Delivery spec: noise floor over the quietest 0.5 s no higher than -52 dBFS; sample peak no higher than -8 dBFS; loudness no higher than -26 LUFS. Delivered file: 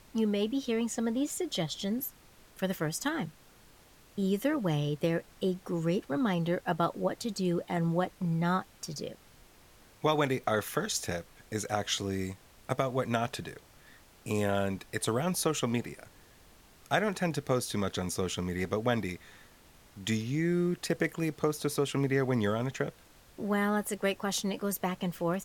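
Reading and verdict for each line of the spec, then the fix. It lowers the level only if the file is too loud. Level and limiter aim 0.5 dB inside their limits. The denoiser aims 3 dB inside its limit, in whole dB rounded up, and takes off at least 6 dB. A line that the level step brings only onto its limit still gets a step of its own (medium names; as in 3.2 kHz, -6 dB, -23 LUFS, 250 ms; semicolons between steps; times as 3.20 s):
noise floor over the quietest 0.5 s -58 dBFS: pass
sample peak -14.0 dBFS: pass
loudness -32.0 LUFS: pass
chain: none needed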